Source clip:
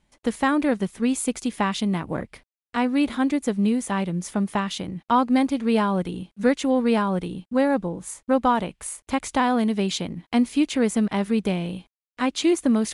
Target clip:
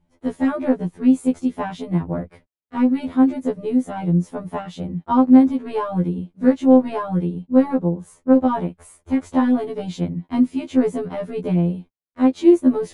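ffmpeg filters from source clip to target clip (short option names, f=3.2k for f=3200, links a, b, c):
-af "aeval=exprs='0.447*(cos(1*acos(clip(val(0)/0.447,-1,1)))-cos(1*PI/2))+0.00794*(cos(7*acos(clip(val(0)/0.447,-1,1)))-cos(7*PI/2))':c=same,tiltshelf=f=1.2k:g=9,afftfilt=real='re*2*eq(mod(b,4),0)':imag='im*2*eq(mod(b,4),0)':win_size=2048:overlap=0.75,volume=-1dB"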